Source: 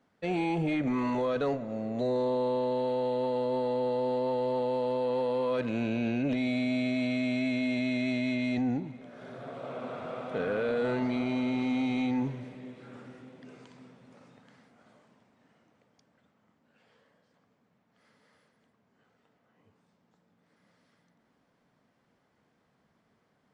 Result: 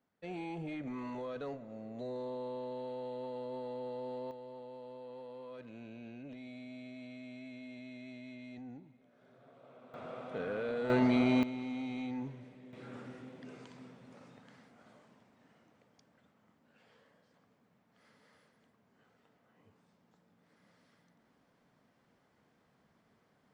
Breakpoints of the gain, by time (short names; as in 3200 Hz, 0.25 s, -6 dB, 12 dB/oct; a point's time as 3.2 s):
-12 dB
from 4.31 s -19 dB
from 9.94 s -7 dB
from 10.9 s +2.5 dB
from 11.43 s -10 dB
from 12.73 s 0 dB